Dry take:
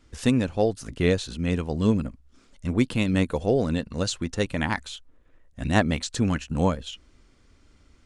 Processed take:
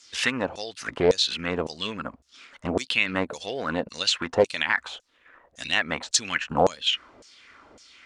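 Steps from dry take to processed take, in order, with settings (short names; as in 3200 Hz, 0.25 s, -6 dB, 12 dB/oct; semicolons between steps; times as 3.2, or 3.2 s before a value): compressor 3:1, threshold -30 dBFS, peak gain reduction 12 dB; LFO band-pass saw down 1.8 Hz 530–6700 Hz; maximiser +29 dB; Doppler distortion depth 0.23 ms; gain -7 dB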